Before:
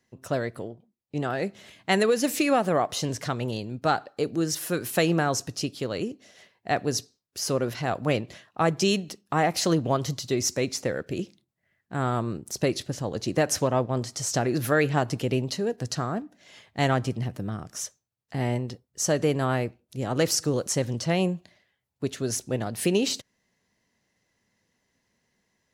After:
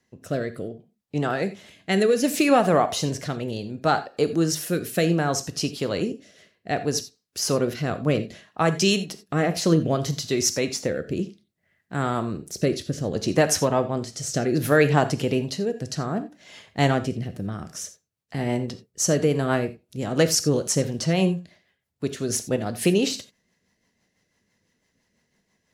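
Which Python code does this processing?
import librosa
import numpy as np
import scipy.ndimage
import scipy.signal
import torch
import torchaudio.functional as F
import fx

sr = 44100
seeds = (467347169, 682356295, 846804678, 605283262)

y = fx.rotary_switch(x, sr, hz=0.65, then_hz=6.0, switch_at_s=17.34)
y = fx.rev_gated(y, sr, seeds[0], gate_ms=110, shape='flat', drr_db=10.5)
y = y * librosa.db_to_amplitude(4.5)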